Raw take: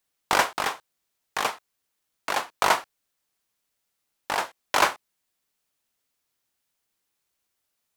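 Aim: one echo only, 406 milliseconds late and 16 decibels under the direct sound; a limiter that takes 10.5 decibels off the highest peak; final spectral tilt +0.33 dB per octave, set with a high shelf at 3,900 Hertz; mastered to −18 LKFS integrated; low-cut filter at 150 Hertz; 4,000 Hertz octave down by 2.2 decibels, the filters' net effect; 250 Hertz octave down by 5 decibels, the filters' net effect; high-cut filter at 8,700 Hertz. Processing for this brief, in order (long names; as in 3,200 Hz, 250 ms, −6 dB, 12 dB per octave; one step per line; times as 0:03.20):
high-pass filter 150 Hz
low-pass filter 8,700 Hz
parametric band 250 Hz −7 dB
high-shelf EQ 3,900 Hz +7.5 dB
parametric band 4,000 Hz −7.5 dB
brickwall limiter −15.5 dBFS
single-tap delay 406 ms −16 dB
level +13.5 dB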